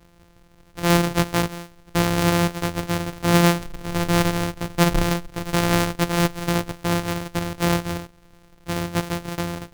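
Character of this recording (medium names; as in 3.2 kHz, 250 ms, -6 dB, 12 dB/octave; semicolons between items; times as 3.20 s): a buzz of ramps at a fixed pitch in blocks of 256 samples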